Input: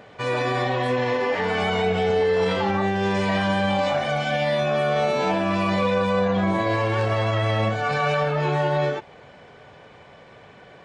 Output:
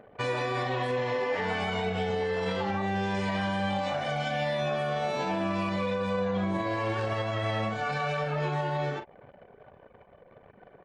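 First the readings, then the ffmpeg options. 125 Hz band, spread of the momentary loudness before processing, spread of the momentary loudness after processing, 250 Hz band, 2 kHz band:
−7.0 dB, 2 LU, 1 LU, −7.0 dB, −7.0 dB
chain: -filter_complex "[0:a]asplit=2[link_01][link_02];[link_02]adelay=42,volume=-9.5dB[link_03];[link_01][link_03]amix=inputs=2:normalize=0,anlmdn=0.158,alimiter=limit=-20dB:level=0:latency=1:release=382,volume=-1dB"

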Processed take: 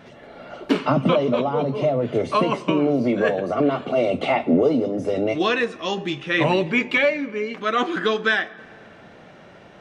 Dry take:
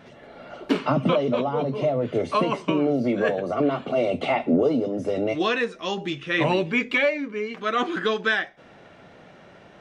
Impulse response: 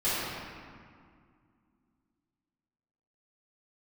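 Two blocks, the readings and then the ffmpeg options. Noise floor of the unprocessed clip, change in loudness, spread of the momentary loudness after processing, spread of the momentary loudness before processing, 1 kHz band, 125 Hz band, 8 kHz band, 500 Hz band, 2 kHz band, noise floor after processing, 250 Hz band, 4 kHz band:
−50 dBFS, +2.5 dB, 6 LU, 7 LU, +2.5 dB, +2.5 dB, can't be measured, +2.5 dB, +2.5 dB, −46 dBFS, +2.5 dB, +2.5 dB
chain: -filter_complex "[0:a]asplit=2[link_01][link_02];[1:a]atrim=start_sample=2205,adelay=17[link_03];[link_02][link_03]afir=irnorm=-1:irlink=0,volume=-31dB[link_04];[link_01][link_04]amix=inputs=2:normalize=0,volume=2.5dB"

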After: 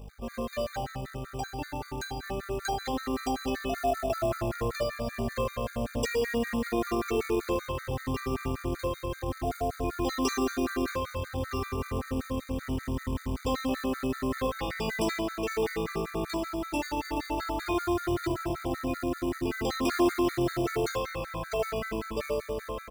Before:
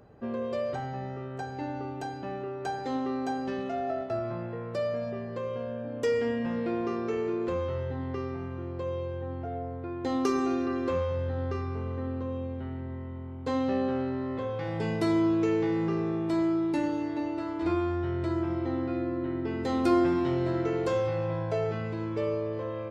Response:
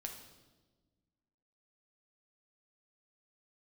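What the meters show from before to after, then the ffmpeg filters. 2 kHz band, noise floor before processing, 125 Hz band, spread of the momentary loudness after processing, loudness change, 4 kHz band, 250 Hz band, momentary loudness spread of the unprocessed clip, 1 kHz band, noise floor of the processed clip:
+5.0 dB, −38 dBFS, −2.0 dB, 6 LU, −1.0 dB, +7.5 dB, −2.5 dB, 9 LU, +2.0 dB, −46 dBFS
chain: -filter_complex "[0:a]highshelf=frequency=3500:gain=8,aeval=exprs='val(0)+0.0126*(sin(2*PI*50*n/s)+sin(2*PI*2*50*n/s)/2+sin(2*PI*3*50*n/s)/3+sin(2*PI*4*50*n/s)/4+sin(2*PI*5*50*n/s)/5)':channel_layout=same,volume=20.5dB,asoftclip=hard,volume=-20.5dB,aeval=exprs='val(0)+0.00126*sin(2*PI*450*n/s)':channel_layout=same,dynaudnorm=framelen=960:gausssize=9:maxgain=14dB,alimiter=limit=-20.5dB:level=0:latency=1:release=251,tiltshelf=frequency=640:gain=-4.5,asplit=2[link_01][link_02];[link_02]adelay=77,lowpass=frequency=1000:poles=1,volume=-4dB,asplit=2[link_03][link_04];[link_04]adelay=77,lowpass=frequency=1000:poles=1,volume=0.17,asplit=2[link_05][link_06];[link_06]adelay=77,lowpass=frequency=1000:poles=1,volume=0.17[link_07];[link_01][link_03][link_05][link_07]amix=inputs=4:normalize=0,asplit=2[link_08][link_09];[1:a]atrim=start_sample=2205,lowshelf=frequency=210:gain=-11[link_10];[link_09][link_10]afir=irnorm=-1:irlink=0,volume=-14dB[link_11];[link_08][link_11]amix=inputs=2:normalize=0,acrusher=bits=4:mode=log:mix=0:aa=0.000001,afftfilt=real='re*gt(sin(2*PI*5.2*pts/sr)*(1-2*mod(floor(b*sr/1024/1200),2)),0)':imag='im*gt(sin(2*PI*5.2*pts/sr)*(1-2*mod(floor(b*sr/1024/1200),2)),0)':win_size=1024:overlap=0.75"

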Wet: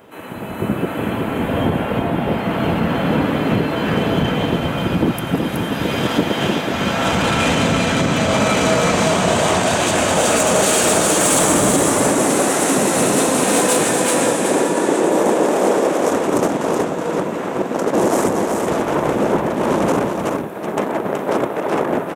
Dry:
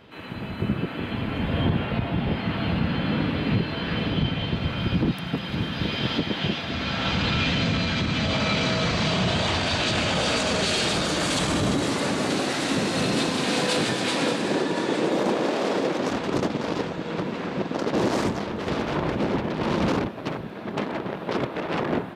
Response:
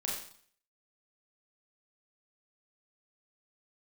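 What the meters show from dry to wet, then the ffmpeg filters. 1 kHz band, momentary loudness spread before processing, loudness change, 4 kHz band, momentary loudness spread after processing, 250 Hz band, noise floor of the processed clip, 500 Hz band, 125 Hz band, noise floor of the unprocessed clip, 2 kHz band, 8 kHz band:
+10.0 dB, 7 LU, +8.0 dB, +2.0 dB, 8 LU, +7.0 dB, −25 dBFS, +10.5 dB, +3.5 dB, −34 dBFS, +6.0 dB, +16.0 dB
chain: -filter_complex "[0:a]equalizer=frequency=630:width=0.31:gain=13.5,dynaudnorm=framelen=110:gausssize=11:maxgain=11.5dB,aeval=exprs='0.944*(cos(1*acos(clip(val(0)/0.944,-1,1)))-cos(1*PI/2))+0.133*(cos(3*acos(clip(val(0)/0.944,-1,1)))-cos(3*PI/2))':channel_layout=same,aexciter=amount=7.1:drive=8.6:freq=6600,asoftclip=type=tanh:threshold=-7.5dB,asplit=2[link_01][link_02];[link_02]aecho=0:1:373:0.562[link_03];[link_01][link_03]amix=inputs=2:normalize=0"

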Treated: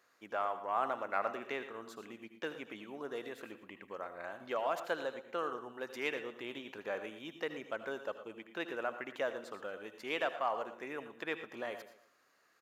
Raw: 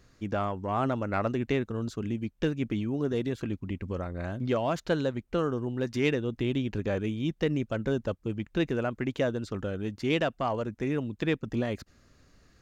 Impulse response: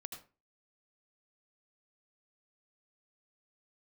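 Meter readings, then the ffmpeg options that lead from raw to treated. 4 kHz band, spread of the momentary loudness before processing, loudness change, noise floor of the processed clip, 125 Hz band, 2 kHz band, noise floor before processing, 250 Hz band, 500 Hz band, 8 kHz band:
−7.0 dB, 6 LU, −9.0 dB, −71 dBFS, −30.0 dB, −3.5 dB, −64 dBFS, −18.0 dB, −8.5 dB, can't be measured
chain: -filter_complex "[0:a]highpass=860,equalizer=frequency=5700:width=0.45:gain=-14,aecho=1:1:116|232|348:0.188|0.0659|0.0231,asplit=2[link_01][link_02];[1:a]atrim=start_sample=2205,highshelf=frequency=5200:gain=12[link_03];[link_02][link_03]afir=irnorm=-1:irlink=0,volume=0.5dB[link_04];[link_01][link_04]amix=inputs=2:normalize=0,aresample=32000,aresample=44100,volume=-2.5dB"

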